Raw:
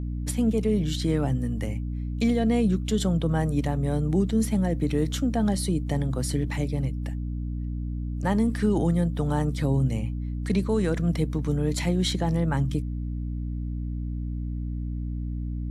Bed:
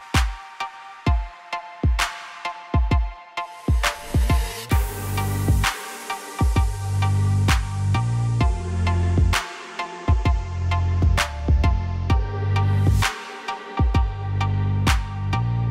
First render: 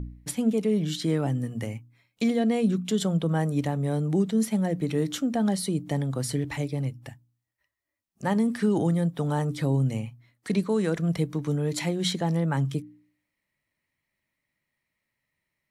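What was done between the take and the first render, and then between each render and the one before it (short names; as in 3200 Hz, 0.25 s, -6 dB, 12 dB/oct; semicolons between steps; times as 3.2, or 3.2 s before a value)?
de-hum 60 Hz, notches 5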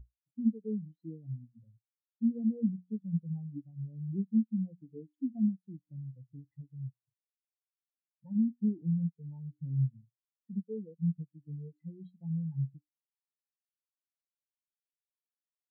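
compressor 2:1, threshold -31 dBFS, peak gain reduction 7.5 dB; spectral expander 4:1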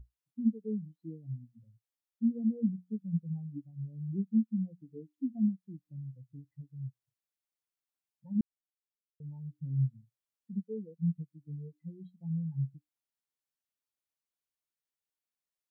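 8.41–9.2 mute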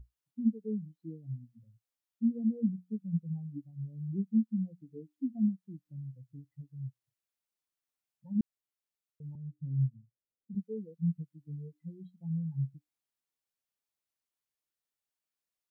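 9.35–10.55 steep low-pass 610 Hz 72 dB/oct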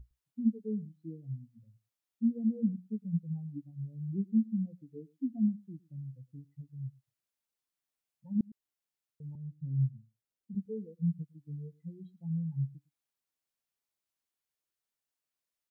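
echo 0.109 s -23 dB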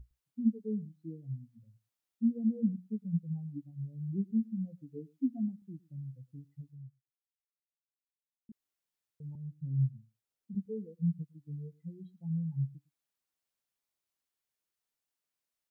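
4.3–5.62 comb 7.3 ms, depth 51%; 6.68–8.49 fade out exponential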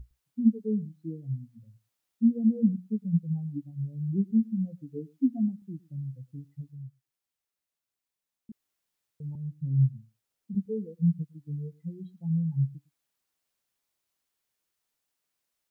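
gain +6.5 dB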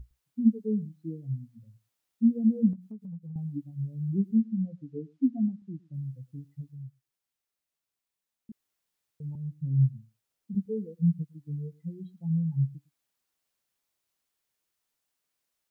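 2.73–3.36 compressor 5:1, threshold -39 dBFS; 4.35–5.94 air absorption 87 m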